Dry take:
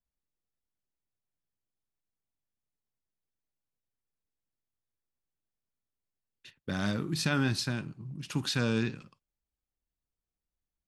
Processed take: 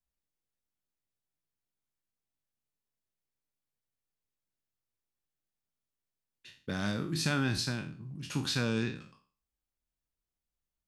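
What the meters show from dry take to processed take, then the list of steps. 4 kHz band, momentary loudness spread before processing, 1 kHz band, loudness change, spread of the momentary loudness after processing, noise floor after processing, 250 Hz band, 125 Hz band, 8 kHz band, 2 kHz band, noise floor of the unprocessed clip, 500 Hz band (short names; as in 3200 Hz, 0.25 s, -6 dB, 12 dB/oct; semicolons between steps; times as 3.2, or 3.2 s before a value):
-0.5 dB, 14 LU, -1.5 dB, -2.0 dB, 14 LU, under -85 dBFS, -2.0 dB, -2.0 dB, 0.0 dB, -1.0 dB, under -85 dBFS, -2.0 dB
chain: spectral trails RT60 0.40 s; gain -2.5 dB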